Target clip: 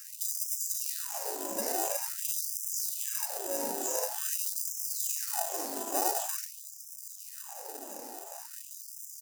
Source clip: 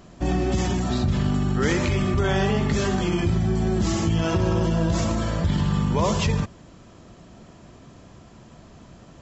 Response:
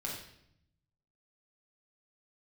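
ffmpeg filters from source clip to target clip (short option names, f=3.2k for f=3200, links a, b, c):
-filter_complex "[0:a]afftfilt=real='re*pow(10,16/40*sin(2*PI*(0.73*log(max(b,1)*sr/1024/100)/log(2)-(-2.5)*(pts-256)/sr)))':imag='im*pow(10,16/40*sin(2*PI*(0.73*log(max(b,1)*sr/1024/100)/log(2)-(-2.5)*(pts-256)/sr)))':win_size=1024:overlap=0.75,acrossover=split=1600|3300[a][b][c];[a]acompressor=threshold=-21dB:ratio=4[d];[b]acompressor=threshold=-45dB:ratio=4[e];[c]acompressor=threshold=-35dB:ratio=4[f];[d][e][f]amix=inputs=3:normalize=0,aeval=exprs='val(0)*sin(2*PI*180*n/s)':c=same,equalizer=f=120:t=o:w=0.38:g=4,bandreject=f=60:t=h:w=6,bandreject=f=120:t=h:w=6,bandreject=f=180:t=h:w=6,aecho=1:1:62|124|186:0.335|0.0804|0.0193,acrossover=split=460[g][h];[g]asoftclip=type=tanh:threshold=-28.5dB[i];[i][h]amix=inputs=2:normalize=0,acompressor=threshold=-34dB:ratio=6,firequalizer=gain_entry='entry(110,0);entry(340,-5);entry(740,13);entry(1400,-14);entry(2100,-8)':delay=0.05:min_phase=1,asplit=2[j][k];[k]acrusher=samples=40:mix=1:aa=0.000001,volume=-5.5dB[l];[j][l]amix=inputs=2:normalize=0,aexciter=amount=9.4:drive=4.9:freq=5.3k,afftfilt=real='re*gte(b*sr/1024,210*pow(5100/210,0.5+0.5*sin(2*PI*0.47*pts/sr)))':imag='im*gte(b*sr/1024,210*pow(5100/210,0.5+0.5*sin(2*PI*0.47*pts/sr)))':win_size=1024:overlap=0.75"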